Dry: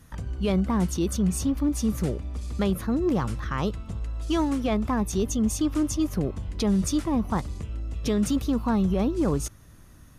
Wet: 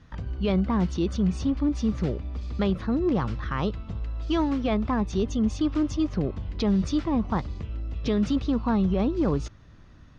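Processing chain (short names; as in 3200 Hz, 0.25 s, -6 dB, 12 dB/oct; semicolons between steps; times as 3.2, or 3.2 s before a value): LPF 4800 Hz 24 dB/oct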